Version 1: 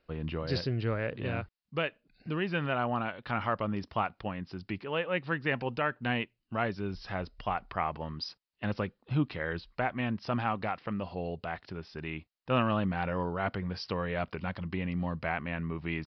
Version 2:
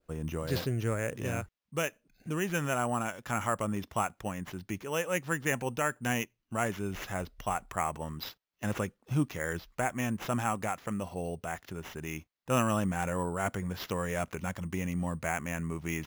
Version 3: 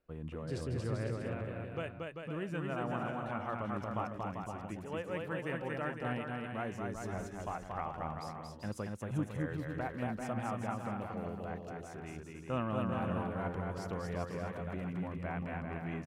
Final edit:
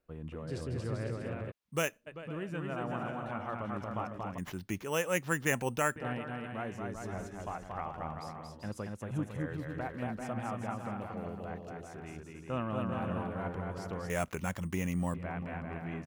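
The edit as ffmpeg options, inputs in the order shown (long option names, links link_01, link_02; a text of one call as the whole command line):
ffmpeg -i take0.wav -i take1.wav -i take2.wav -filter_complex "[1:a]asplit=3[link_01][link_02][link_03];[2:a]asplit=4[link_04][link_05][link_06][link_07];[link_04]atrim=end=1.52[link_08];[link_01]atrim=start=1.5:end=2.08[link_09];[link_05]atrim=start=2.06:end=4.382[link_10];[link_02]atrim=start=4.378:end=5.962[link_11];[link_06]atrim=start=5.958:end=14.102[link_12];[link_03]atrim=start=14.098:end=15.142[link_13];[link_07]atrim=start=15.138[link_14];[link_08][link_09]acrossfade=duration=0.02:curve1=tri:curve2=tri[link_15];[link_15][link_10]acrossfade=duration=0.02:curve1=tri:curve2=tri[link_16];[link_16][link_11]acrossfade=duration=0.004:curve1=hsin:curve2=hsin[link_17];[link_17][link_12]acrossfade=duration=0.004:curve1=hsin:curve2=hsin[link_18];[link_18][link_13]acrossfade=duration=0.004:curve1=hsin:curve2=hsin[link_19];[link_19][link_14]acrossfade=duration=0.004:curve1=hsin:curve2=hsin" out.wav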